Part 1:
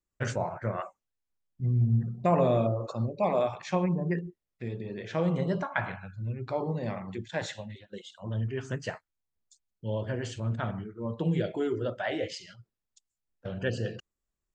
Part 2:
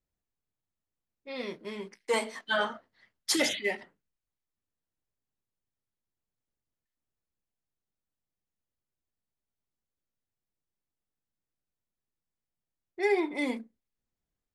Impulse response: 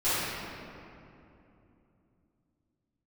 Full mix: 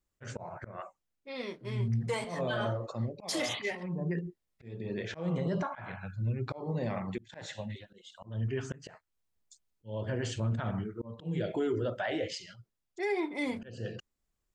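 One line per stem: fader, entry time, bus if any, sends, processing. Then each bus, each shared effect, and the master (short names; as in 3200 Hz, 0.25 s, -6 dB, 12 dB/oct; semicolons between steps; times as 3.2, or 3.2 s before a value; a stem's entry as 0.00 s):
+2.5 dB, 0.00 s, no send, auto swell 0.322 s; auto duck -6 dB, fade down 0.95 s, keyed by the second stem
-2.0 dB, 0.00 s, no send, LPF 10000 Hz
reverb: off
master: limiter -23.5 dBFS, peak gain reduction 8.5 dB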